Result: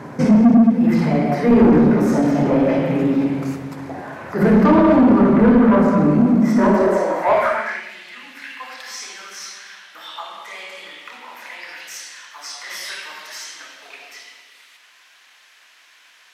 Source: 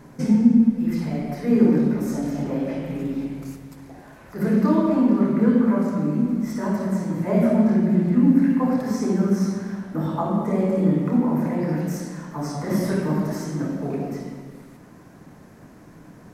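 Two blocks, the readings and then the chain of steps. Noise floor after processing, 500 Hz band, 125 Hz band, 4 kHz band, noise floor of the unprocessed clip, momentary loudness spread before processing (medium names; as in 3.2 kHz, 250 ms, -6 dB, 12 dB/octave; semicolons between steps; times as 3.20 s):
-51 dBFS, +7.0 dB, +1.0 dB, no reading, -47 dBFS, 12 LU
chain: high-pass sweep 95 Hz -> 3.1 kHz, 6.21–7.96 s; overdrive pedal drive 24 dB, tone 1.4 kHz, clips at -3 dBFS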